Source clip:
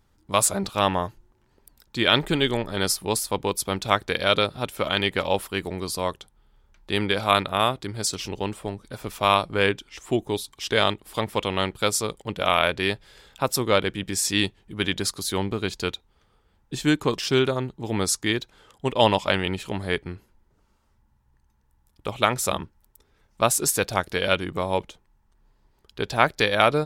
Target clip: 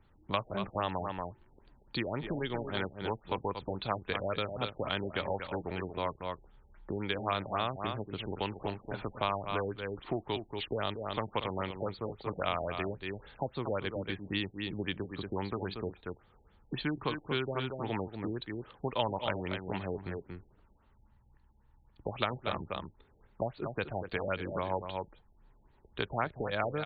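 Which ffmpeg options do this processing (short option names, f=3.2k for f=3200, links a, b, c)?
-filter_complex "[0:a]aecho=1:1:233:0.335,acrossover=split=140|760[a][b][c];[a]acompressor=threshold=-45dB:ratio=4[d];[b]acompressor=threshold=-37dB:ratio=4[e];[c]acompressor=threshold=-33dB:ratio=4[f];[d][e][f]amix=inputs=3:normalize=0,afftfilt=real='re*lt(b*sr/1024,840*pow(4700/840,0.5+0.5*sin(2*PI*3.7*pts/sr)))':imag='im*lt(b*sr/1024,840*pow(4700/840,0.5+0.5*sin(2*PI*3.7*pts/sr)))':win_size=1024:overlap=0.75"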